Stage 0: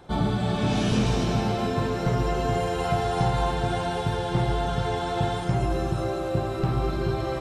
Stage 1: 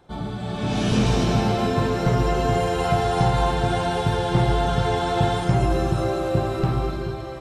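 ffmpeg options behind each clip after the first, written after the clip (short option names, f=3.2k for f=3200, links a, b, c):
-af "dynaudnorm=f=170:g=9:m=13.5dB,volume=-6dB"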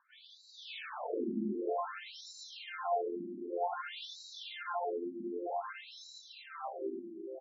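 -af "asubboost=boost=8:cutoff=58,aecho=1:1:141:0.473,afftfilt=real='re*between(b*sr/1024,260*pow(5400/260,0.5+0.5*sin(2*PI*0.53*pts/sr))/1.41,260*pow(5400/260,0.5+0.5*sin(2*PI*0.53*pts/sr))*1.41)':imag='im*between(b*sr/1024,260*pow(5400/260,0.5+0.5*sin(2*PI*0.53*pts/sr))/1.41,260*pow(5400/260,0.5+0.5*sin(2*PI*0.53*pts/sr))*1.41)':win_size=1024:overlap=0.75,volume=-8dB"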